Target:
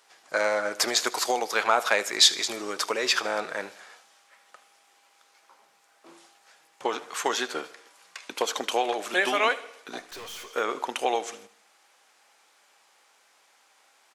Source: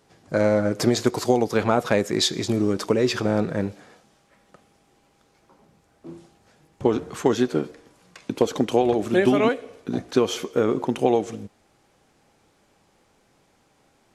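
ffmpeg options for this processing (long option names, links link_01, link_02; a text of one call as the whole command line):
ffmpeg -i in.wav -filter_complex "[0:a]highpass=1000,asettb=1/sr,asplit=3[link_01][link_02][link_03];[link_01]atrim=end=10.004[link_04];[link_02]atrim=start=10:end=10.5,asetpts=PTS-STARTPTS,afade=type=in:duration=0.004:curve=qsin,afade=type=out:start_time=0.496:duration=0.004:curve=qsin,aeval=exprs='(tanh(158*val(0)+0.2)-tanh(0.2))/158':channel_layout=same[link_05];[link_03]atrim=start=10.496[link_06];[link_04][link_05]acrossfade=duration=0.004:curve1=hsin:curve2=qsin[link_07];[link_07][link_06]acrossfade=duration=0.004:curve1=qsin:curve2=hsin,asplit=2[link_08][link_09];[link_09]aecho=0:1:77|154|231|308:0.112|0.0527|0.0248|0.0116[link_10];[link_08][link_10]amix=inputs=2:normalize=0,volume=5dB" out.wav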